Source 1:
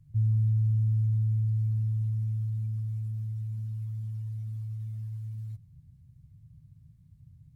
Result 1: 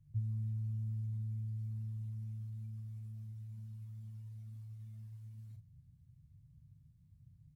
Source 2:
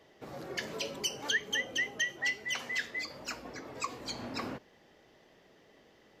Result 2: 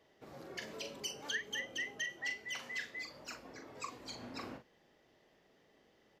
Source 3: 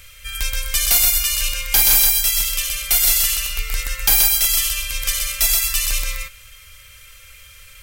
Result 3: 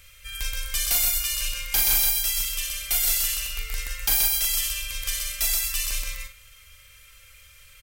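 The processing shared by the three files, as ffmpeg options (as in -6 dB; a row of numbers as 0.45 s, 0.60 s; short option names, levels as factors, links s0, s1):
-filter_complex "[0:a]asplit=2[s0][s1];[s1]adelay=41,volume=0.447[s2];[s0][s2]amix=inputs=2:normalize=0,volume=0.398"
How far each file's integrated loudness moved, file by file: -13.0 LU, -7.0 LU, -7.0 LU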